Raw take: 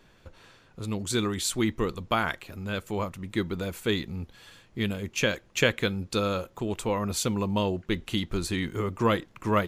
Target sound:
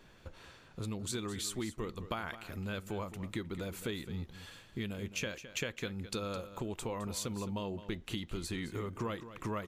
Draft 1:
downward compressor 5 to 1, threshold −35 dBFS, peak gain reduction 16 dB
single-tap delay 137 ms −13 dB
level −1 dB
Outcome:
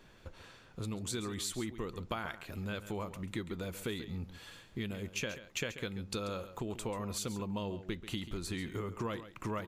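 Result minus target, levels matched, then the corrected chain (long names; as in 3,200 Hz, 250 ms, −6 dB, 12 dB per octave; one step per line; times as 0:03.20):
echo 76 ms early
downward compressor 5 to 1, threshold −35 dBFS, peak gain reduction 16 dB
single-tap delay 213 ms −13 dB
level −1 dB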